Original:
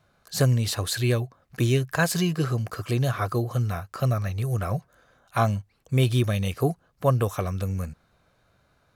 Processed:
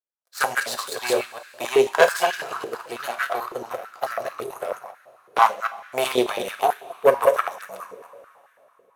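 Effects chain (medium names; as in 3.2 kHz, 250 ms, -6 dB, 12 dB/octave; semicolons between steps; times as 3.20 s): chunks repeated in reverse 126 ms, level -2 dB; power-law waveshaper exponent 2; two-slope reverb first 0.34 s, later 3.5 s, from -18 dB, DRR 7 dB; step-sequenced high-pass 9.1 Hz 440–1600 Hz; trim +6.5 dB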